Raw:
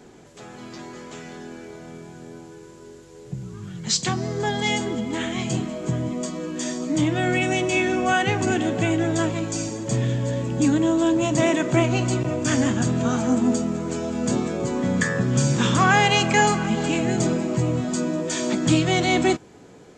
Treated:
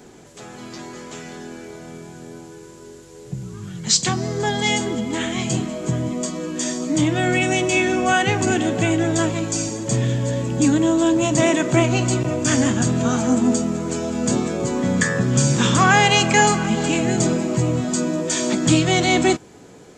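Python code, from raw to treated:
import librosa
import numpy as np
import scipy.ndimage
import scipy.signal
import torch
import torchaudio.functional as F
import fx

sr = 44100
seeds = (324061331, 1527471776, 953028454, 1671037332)

y = fx.high_shelf(x, sr, hz=7100.0, db=8.0)
y = y * 10.0 ** (2.5 / 20.0)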